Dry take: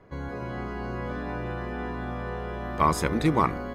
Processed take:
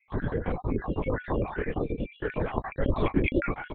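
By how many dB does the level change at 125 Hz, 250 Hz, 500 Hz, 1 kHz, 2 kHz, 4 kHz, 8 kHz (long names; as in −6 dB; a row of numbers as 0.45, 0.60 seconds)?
0.0 dB, −0.5 dB, +1.5 dB, −8.0 dB, −0.5 dB, −6.0 dB, below −40 dB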